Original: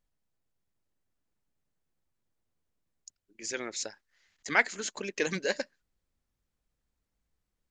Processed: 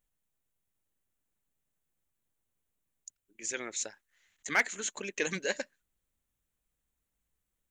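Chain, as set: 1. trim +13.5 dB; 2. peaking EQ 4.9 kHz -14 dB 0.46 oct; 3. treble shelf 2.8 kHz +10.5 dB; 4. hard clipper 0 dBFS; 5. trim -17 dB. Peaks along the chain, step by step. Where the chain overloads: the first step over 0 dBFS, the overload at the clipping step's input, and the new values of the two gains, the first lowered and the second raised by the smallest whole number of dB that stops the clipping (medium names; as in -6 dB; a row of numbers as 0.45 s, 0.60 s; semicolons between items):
+5.5 dBFS, +5.0 dBFS, +8.0 dBFS, 0.0 dBFS, -17.0 dBFS; step 1, 8.0 dB; step 1 +5.5 dB, step 5 -9 dB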